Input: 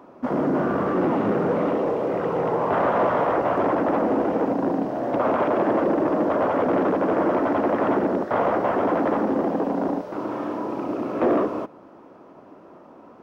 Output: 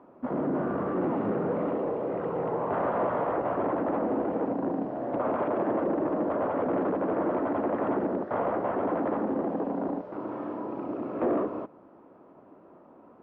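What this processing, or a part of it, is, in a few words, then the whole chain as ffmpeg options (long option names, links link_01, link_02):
phone in a pocket: -af "lowpass=3300,highshelf=frequency=2100:gain=-8.5,volume=-6dB"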